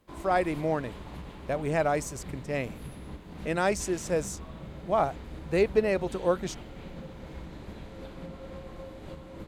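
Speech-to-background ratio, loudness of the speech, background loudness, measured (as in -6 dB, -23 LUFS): 14.0 dB, -29.5 LUFS, -43.5 LUFS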